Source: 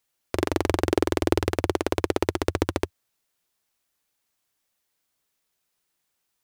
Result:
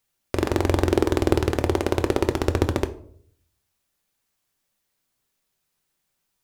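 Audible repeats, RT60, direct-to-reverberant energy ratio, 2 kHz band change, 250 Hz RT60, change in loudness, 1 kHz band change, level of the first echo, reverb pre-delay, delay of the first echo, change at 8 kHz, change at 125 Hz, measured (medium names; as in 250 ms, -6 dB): no echo, 0.60 s, 8.0 dB, +0.5 dB, 0.70 s, +2.5 dB, +1.0 dB, no echo, 5 ms, no echo, +0.5 dB, +6.0 dB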